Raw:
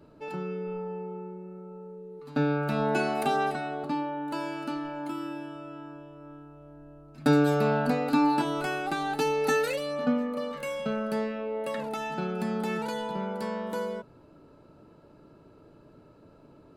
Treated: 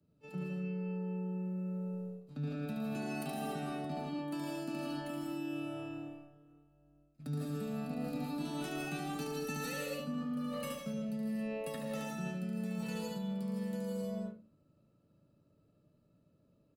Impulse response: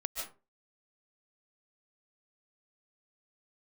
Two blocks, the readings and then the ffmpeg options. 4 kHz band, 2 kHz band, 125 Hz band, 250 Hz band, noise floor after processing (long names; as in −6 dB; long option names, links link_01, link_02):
−8.0 dB, −12.5 dB, −5.0 dB, −7.0 dB, −71 dBFS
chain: -filter_complex "[0:a]highpass=frequency=100:poles=1,bass=frequency=250:gain=14,treble=frequency=4000:gain=-4,acrossover=split=170[link_01][link_02];[link_02]acompressor=threshold=-33dB:ratio=2.5[link_03];[link_01][link_03]amix=inputs=2:normalize=0,acrossover=split=230|1400[link_04][link_05][link_06];[link_06]crystalizer=i=5.5:c=0[link_07];[link_04][link_05][link_07]amix=inputs=3:normalize=0,equalizer=frequency=230:width=0.73:gain=7.5,agate=range=-22dB:threshold=-31dB:ratio=16:detection=peak,aecho=1:1:1.6:0.32,aecho=1:1:72.89|113.7:0.631|0.398[link_08];[1:a]atrim=start_sample=2205,asetrate=40572,aresample=44100[link_09];[link_08][link_09]afir=irnorm=-1:irlink=0,areverse,acompressor=threshold=-29dB:ratio=6,areverse,volume=-7dB"